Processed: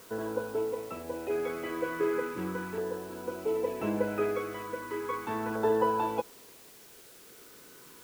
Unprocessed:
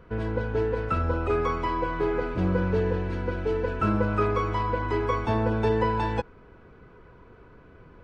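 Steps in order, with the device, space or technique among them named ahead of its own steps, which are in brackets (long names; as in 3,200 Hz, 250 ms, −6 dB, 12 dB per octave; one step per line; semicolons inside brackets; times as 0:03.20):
shortwave radio (band-pass filter 290–2,600 Hz; amplitude tremolo 0.51 Hz, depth 48%; auto-filter notch saw down 0.36 Hz 520–2,500 Hz; white noise bed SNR 21 dB)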